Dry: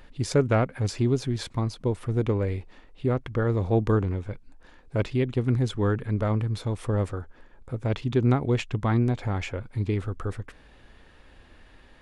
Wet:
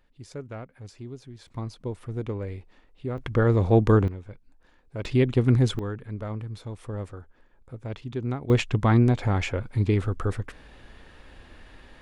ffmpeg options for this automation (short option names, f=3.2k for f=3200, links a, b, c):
-af "asetnsamples=n=441:p=0,asendcmd='1.48 volume volume -6.5dB;3.18 volume volume 4dB;4.08 volume volume -8dB;5.05 volume volume 4dB;5.79 volume volume -8dB;8.5 volume volume 4dB',volume=-16dB"